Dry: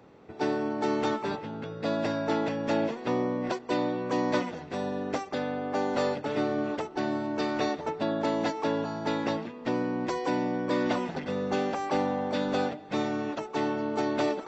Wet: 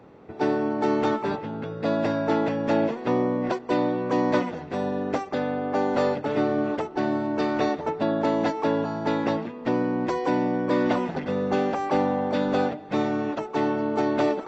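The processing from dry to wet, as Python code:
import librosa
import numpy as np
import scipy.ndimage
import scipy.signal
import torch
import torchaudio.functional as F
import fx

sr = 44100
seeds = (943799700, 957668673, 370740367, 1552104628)

y = fx.high_shelf(x, sr, hz=3100.0, db=-9.0)
y = y * 10.0 ** (5.0 / 20.0)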